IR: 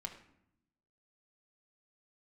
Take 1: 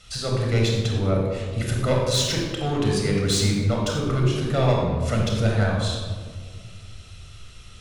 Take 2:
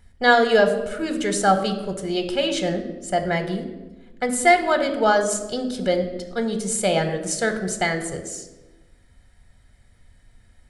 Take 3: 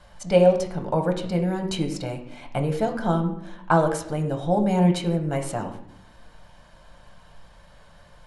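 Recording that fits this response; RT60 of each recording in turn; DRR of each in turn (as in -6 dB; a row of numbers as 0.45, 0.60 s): 3; 1.8, 1.1, 0.75 s; -1.0, 6.5, 3.0 dB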